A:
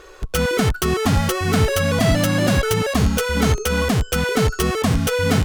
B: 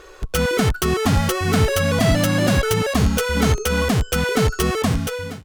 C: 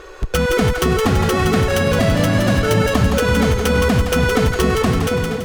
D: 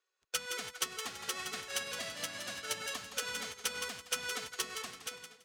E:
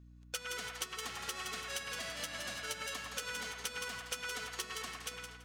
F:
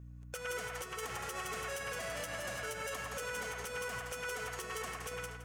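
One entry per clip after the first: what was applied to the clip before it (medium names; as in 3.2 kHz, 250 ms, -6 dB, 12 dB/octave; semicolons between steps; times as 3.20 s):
fade out at the end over 0.64 s
treble shelf 4.1 kHz -6.5 dB; compression, threshold -19 dBFS, peak gain reduction 7.5 dB; two-band feedback delay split 690 Hz, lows 270 ms, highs 167 ms, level -5.5 dB; trim +6 dB
band-pass filter 6.6 kHz, Q 0.61; in parallel at -11 dB: wavefolder -24 dBFS; on the sum: upward expansion 2.5:1, over -45 dBFS; trim -6 dB
hum 60 Hz, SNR 17 dB; feedback echo behind a band-pass 108 ms, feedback 32%, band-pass 1.4 kHz, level -4 dB; compression 3:1, threshold -39 dBFS, peak gain reduction 8 dB; trim +1 dB
graphic EQ 125/250/500/4000 Hz +5/-6/+6/-11 dB; peak limiter -36.5 dBFS, peak gain reduction 10.5 dB; trim +5.5 dB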